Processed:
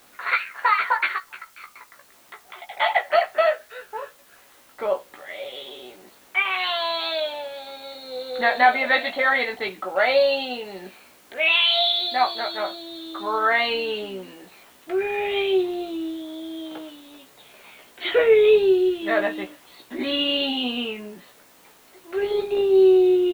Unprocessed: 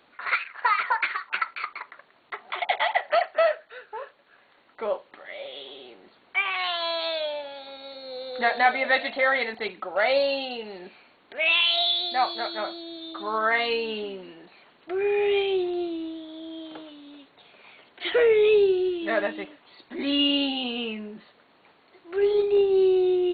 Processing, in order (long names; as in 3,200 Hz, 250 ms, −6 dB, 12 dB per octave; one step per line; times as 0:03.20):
0:01.18–0:02.77: downward compressor 2.5 to 1, threshold −48 dBFS, peak gain reduction 18.5 dB
background noise white −59 dBFS
double-tracking delay 16 ms −5 dB
level +2 dB